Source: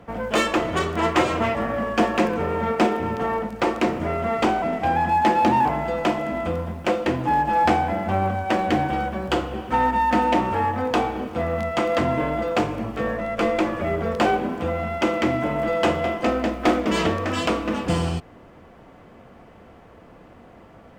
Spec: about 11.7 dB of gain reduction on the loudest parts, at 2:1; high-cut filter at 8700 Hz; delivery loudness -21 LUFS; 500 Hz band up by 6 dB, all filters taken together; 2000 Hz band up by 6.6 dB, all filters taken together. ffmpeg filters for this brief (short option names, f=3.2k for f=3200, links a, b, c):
-af "lowpass=8.7k,equalizer=f=500:t=o:g=7,equalizer=f=2k:t=o:g=7.5,acompressor=threshold=-33dB:ratio=2,volume=7.5dB"